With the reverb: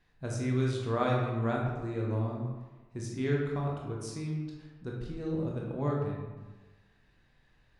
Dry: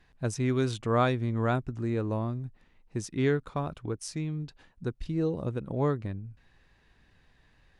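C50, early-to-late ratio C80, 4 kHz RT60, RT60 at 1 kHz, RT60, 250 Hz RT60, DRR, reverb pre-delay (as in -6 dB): 1.0 dB, 3.5 dB, 0.75 s, 1.3 s, 1.2 s, 1.2 s, -2.5 dB, 17 ms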